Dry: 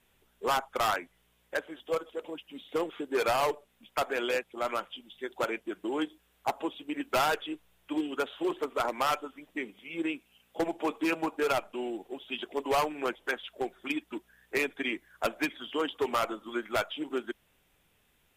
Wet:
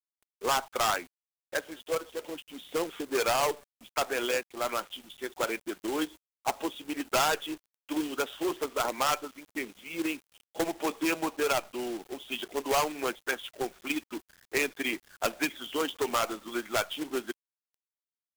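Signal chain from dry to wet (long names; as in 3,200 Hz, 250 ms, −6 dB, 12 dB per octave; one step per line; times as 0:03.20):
parametric band 6,700 Hz +8 dB 0.98 octaves
log-companded quantiser 4 bits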